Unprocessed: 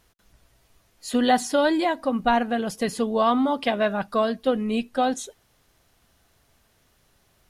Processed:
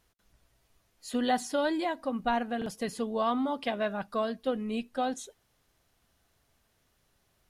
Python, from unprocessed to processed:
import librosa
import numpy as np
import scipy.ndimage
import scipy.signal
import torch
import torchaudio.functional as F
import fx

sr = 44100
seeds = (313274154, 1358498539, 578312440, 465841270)

y = fx.buffer_glitch(x, sr, at_s=(2.57,), block=2048, repeats=1)
y = F.gain(torch.from_numpy(y), -8.0).numpy()